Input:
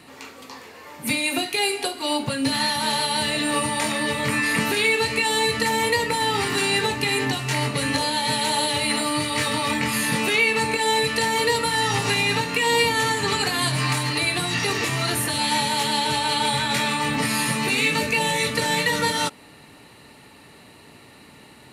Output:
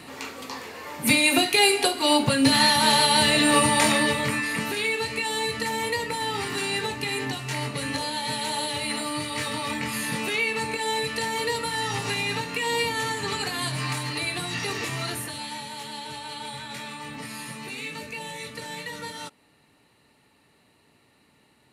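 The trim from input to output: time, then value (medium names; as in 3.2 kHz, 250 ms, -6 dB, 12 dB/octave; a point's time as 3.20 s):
3.94 s +4 dB
4.48 s -6 dB
15.03 s -6 dB
15.57 s -14 dB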